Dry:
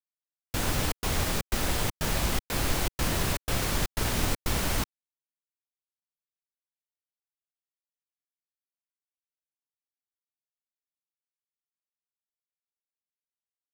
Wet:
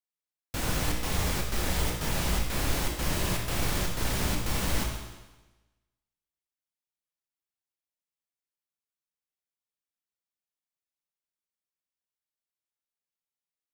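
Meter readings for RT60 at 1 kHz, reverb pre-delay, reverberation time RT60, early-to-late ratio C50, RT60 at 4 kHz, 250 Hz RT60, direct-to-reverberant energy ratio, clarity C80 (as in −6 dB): 1.1 s, 17 ms, 1.1 s, 3.5 dB, 1.1 s, 1.1 s, 0.5 dB, 5.5 dB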